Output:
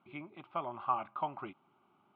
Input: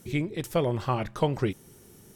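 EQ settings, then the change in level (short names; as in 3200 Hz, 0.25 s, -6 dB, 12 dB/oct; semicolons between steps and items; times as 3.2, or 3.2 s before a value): speaker cabinet 370–2400 Hz, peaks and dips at 560 Hz +5 dB, 790 Hz +5 dB, 1200 Hz +8 dB; fixed phaser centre 1800 Hz, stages 6; -6.5 dB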